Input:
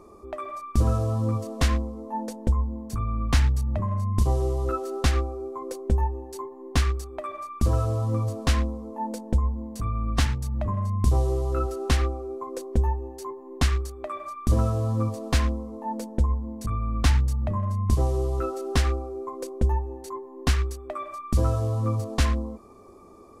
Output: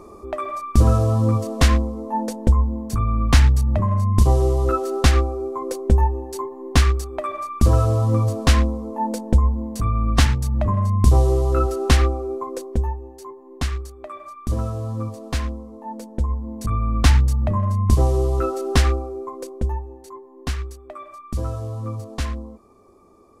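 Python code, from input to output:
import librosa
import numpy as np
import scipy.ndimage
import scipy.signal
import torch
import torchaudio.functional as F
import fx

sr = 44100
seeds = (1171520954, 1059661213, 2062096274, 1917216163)

y = fx.gain(x, sr, db=fx.line((12.34, 7.0), (13.0, -2.0), (16.04, -2.0), (16.75, 6.0), (18.85, 6.0), (19.98, -3.5)))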